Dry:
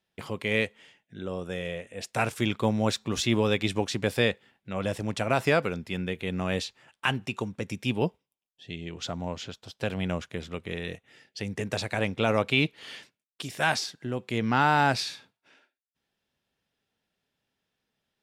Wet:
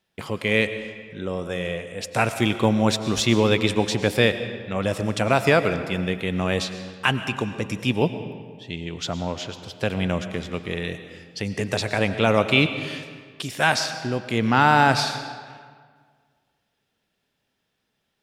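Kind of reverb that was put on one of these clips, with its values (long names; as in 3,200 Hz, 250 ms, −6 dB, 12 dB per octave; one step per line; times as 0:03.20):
comb and all-pass reverb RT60 1.8 s, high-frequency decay 0.7×, pre-delay 70 ms, DRR 10 dB
level +5.5 dB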